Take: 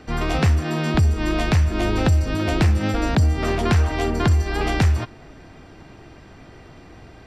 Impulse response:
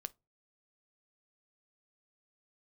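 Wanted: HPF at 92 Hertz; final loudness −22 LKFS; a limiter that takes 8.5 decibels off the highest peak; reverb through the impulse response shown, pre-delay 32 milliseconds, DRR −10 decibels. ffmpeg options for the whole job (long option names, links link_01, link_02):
-filter_complex "[0:a]highpass=92,alimiter=limit=-16dB:level=0:latency=1,asplit=2[link_01][link_02];[1:a]atrim=start_sample=2205,adelay=32[link_03];[link_02][link_03]afir=irnorm=-1:irlink=0,volume=13.5dB[link_04];[link_01][link_04]amix=inputs=2:normalize=0,volume=-6.5dB"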